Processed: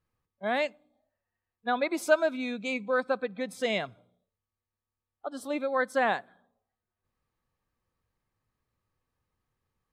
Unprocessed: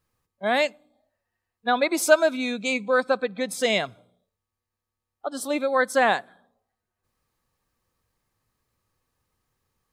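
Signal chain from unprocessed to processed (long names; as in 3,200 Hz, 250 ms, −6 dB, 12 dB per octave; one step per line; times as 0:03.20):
bass and treble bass +2 dB, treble −8 dB
level −6 dB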